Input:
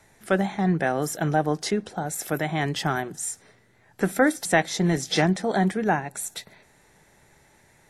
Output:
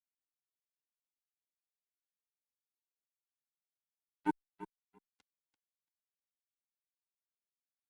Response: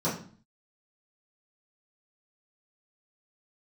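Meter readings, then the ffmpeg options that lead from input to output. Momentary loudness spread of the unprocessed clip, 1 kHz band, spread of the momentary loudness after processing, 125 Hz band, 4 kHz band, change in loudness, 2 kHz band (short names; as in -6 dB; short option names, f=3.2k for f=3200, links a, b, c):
9 LU, -22.0 dB, 15 LU, -36.5 dB, under -40 dB, -15.0 dB, -29.5 dB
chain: -filter_complex "[0:a]lowshelf=f=200:g=-5.5,bandreject=f=770:w=12,acrossover=split=400|680|3100[a][b][c][d];[b]acontrast=80[e];[a][e][c][d]amix=inputs=4:normalize=0,asplit=3[f][g][h];[f]bandpass=f=300:t=q:w=8,volume=0dB[i];[g]bandpass=f=870:t=q:w=8,volume=-6dB[j];[h]bandpass=f=2.24k:t=q:w=8,volume=-9dB[k];[i][j][k]amix=inputs=3:normalize=0,tremolo=f=110:d=0.261,aexciter=amount=6.8:drive=6.9:freq=6.7k,acrusher=bits=2:mix=0:aa=0.5,aecho=1:1:339|678:0.224|0.0358,asplit=2[l][m];[m]adelay=2.6,afreqshift=0.64[n];[l][n]amix=inputs=2:normalize=1,volume=1.5dB"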